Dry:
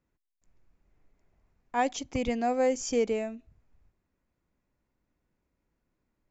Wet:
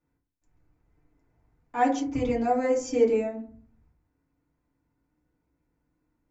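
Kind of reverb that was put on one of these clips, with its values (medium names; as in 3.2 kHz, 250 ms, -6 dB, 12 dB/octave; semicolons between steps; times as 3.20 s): FDN reverb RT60 0.48 s, low-frequency decay 1.4×, high-frequency decay 0.3×, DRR -7.5 dB; trim -7 dB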